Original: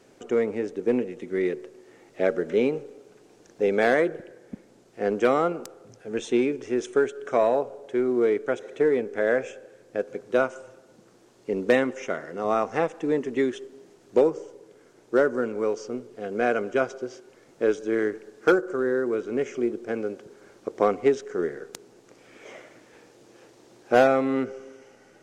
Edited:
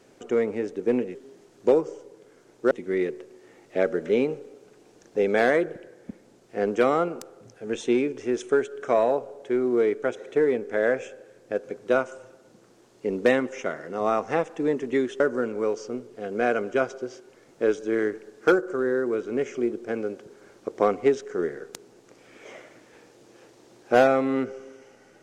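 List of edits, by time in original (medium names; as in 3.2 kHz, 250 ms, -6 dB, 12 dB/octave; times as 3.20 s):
13.64–15.20 s: move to 1.15 s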